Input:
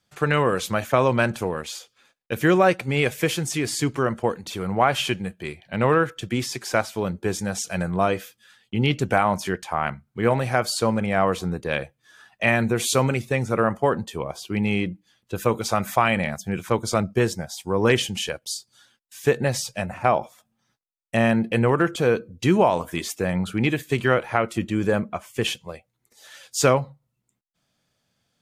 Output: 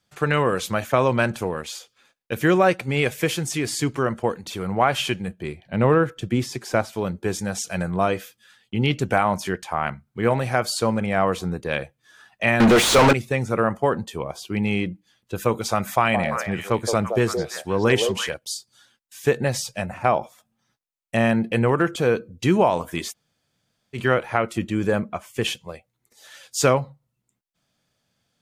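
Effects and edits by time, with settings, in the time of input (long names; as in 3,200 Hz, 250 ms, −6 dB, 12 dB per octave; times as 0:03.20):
0:05.28–0:06.93: tilt shelving filter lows +4 dB, about 800 Hz
0:12.60–0:13.13: mid-hump overdrive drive 38 dB, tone 2,300 Hz, clips at −6.5 dBFS
0:15.93–0:18.34: echo through a band-pass that steps 170 ms, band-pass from 550 Hz, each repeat 1.4 octaves, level −2 dB
0:23.11–0:23.96: fill with room tone, crossfade 0.06 s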